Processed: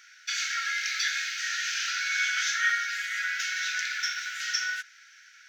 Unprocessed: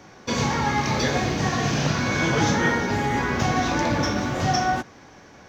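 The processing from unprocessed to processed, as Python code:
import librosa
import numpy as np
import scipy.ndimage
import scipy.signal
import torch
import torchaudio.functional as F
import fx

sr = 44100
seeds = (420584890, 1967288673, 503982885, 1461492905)

y = fx.brickwall_highpass(x, sr, low_hz=1300.0)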